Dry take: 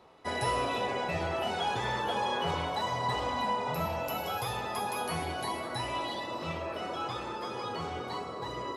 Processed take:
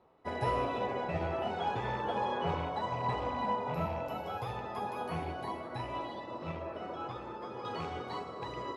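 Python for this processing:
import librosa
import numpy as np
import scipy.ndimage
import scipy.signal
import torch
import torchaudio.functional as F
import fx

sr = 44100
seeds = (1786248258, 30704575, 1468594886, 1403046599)

y = fx.rattle_buzz(x, sr, strikes_db=-38.0, level_db=-33.0)
y = fx.lowpass(y, sr, hz=fx.steps((0.0, 1100.0), (7.65, 3800.0)), slope=6)
y = fx.upward_expand(y, sr, threshold_db=-45.0, expansion=1.5)
y = F.gain(torch.from_numpy(y), 1.5).numpy()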